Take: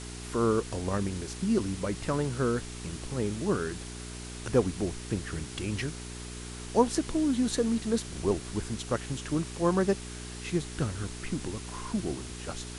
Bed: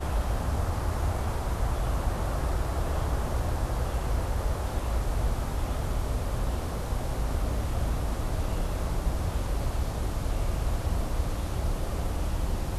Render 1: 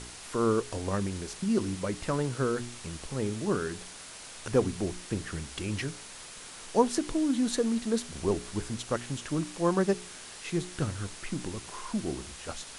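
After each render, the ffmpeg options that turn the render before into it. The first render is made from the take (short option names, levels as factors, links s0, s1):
-af "bandreject=f=60:t=h:w=4,bandreject=f=120:t=h:w=4,bandreject=f=180:t=h:w=4,bandreject=f=240:t=h:w=4,bandreject=f=300:t=h:w=4,bandreject=f=360:t=h:w=4,bandreject=f=420:t=h:w=4"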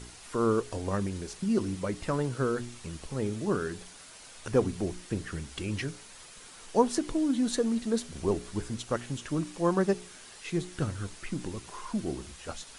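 -af "afftdn=nr=6:nf=-46"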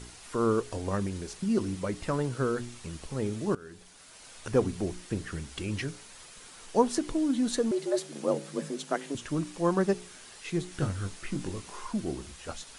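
-filter_complex "[0:a]asettb=1/sr,asplit=3[s0][s1][s2];[s0]atrim=end=7.714[s3];[s1]atrim=start=7.71:end=9.15,asetpts=PTS-STARTPTS,afade=t=in:d=0.004:c=qsin,afade=t=out:st=1.436:d=0.004:c=qsin,afreqshift=140[s4];[s2]atrim=start=9.146[s5];[s3][s4]acrossfade=d=0.004:c1=hsin:c2=qsin[s6];[s6][s5]acrossfade=d=0.004:c1=qsin:c2=hsin,asettb=1/sr,asplit=3[s7][s8][s9];[s7]atrim=end=10.694[s10];[s8]atrim=start=10.69:end=11.87,asetpts=PTS-STARTPTS,afade=t=in:d=0.004:c=qsin,afade=t=out:st=1.176:d=0.004:c=qsin,asplit=2[s11][s12];[s12]adelay=21,volume=0.531[s13];[s11][s13]amix=inputs=2:normalize=0,atrim=end_sample=52038[s14];[s9]atrim=start=11.866[s15];[s10][s14]acrossfade=d=0.004:c1=hsin:c2=qsin[s16];[s16][s15]acrossfade=d=0.004:c1=qsin:c2=hsin,asplit=2[s17][s18];[s17]atrim=end=3.55,asetpts=PTS-STARTPTS,afade=t=out:st=3.546:d=0.004:c=hsin:silence=0.112202[s19];[s18]atrim=start=3.55,asetpts=PTS-STARTPTS,afade=t=in:d=0.77:silence=0.112202[s20];[s19][s20]concat=n=2:v=0:a=1"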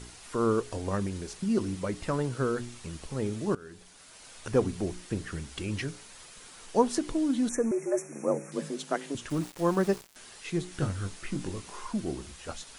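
-filter_complex "[0:a]asettb=1/sr,asplit=3[s0][s1][s2];[s0]atrim=end=7.494[s3];[s1]atrim=start=7.49:end=8.52,asetpts=PTS-STARTPTS,afade=t=in:d=0.004:c=qsin,afade=t=out:st=1.026:d=0.004:c=qsin,asuperstop=centerf=3800:order=20:qfactor=1.3[s4];[s2]atrim=start=8.516[s5];[s3][s4]acrossfade=d=0.004:c1=hsin:c2=qsin[s6];[s6][s5]acrossfade=d=0.004:c1=qsin:c2=hsin,asettb=1/sr,asplit=3[s7][s8][s9];[s7]atrim=end=9.304[s10];[s8]atrim=start=9.3:end=10.16,asetpts=PTS-STARTPTS,afade=t=in:d=0.004:c=qsin,afade=t=out:st=0.856:d=0.004:c=qsin,aeval=exprs='val(0)*gte(abs(val(0)),0.01)':c=same[s11];[s9]atrim=start=10.156[s12];[s10][s11]acrossfade=d=0.004:c1=hsin:c2=qsin[s13];[s13][s12]acrossfade=d=0.004:c1=qsin:c2=hsin"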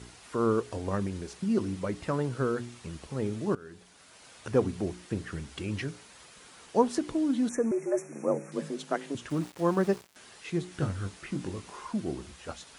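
-af "highpass=63,highshelf=f=4600:g=-6.5"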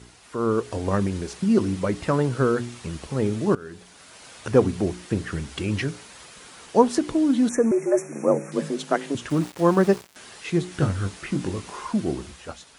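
-af "dynaudnorm=f=110:g=11:m=2.51"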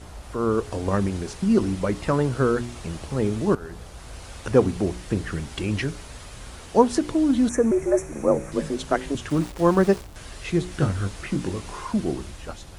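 -filter_complex "[1:a]volume=0.237[s0];[0:a][s0]amix=inputs=2:normalize=0"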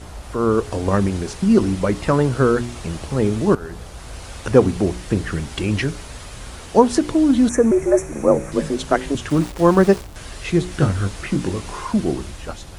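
-af "volume=1.78,alimiter=limit=0.891:level=0:latency=1"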